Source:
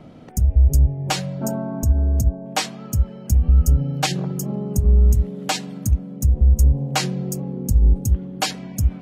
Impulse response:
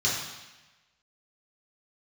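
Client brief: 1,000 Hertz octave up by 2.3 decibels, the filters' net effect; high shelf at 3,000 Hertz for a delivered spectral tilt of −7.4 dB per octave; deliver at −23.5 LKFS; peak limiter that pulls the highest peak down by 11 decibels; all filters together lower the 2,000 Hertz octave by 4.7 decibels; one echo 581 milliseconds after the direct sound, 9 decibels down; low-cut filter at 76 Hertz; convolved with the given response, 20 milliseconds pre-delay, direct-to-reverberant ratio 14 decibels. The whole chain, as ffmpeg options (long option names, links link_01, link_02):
-filter_complex "[0:a]highpass=76,equalizer=frequency=1000:width_type=o:gain=5,equalizer=frequency=2000:width_type=o:gain=-4.5,highshelf=frequency=3000:gain=-8,alimiter=limit=-17dB:level=0:latency=1,aecho=1:1:581:0.355,asplit=2[link_01][link_02];[1:a]atrim=start_sample=2205,adelay=20[link_03];[link_02][link_03]afir=irnorm=-1:irlink=0,volume=-25dB[link_04];[link_01][link_04]amix=inputs=2:normalize=0,volume=2.5dB"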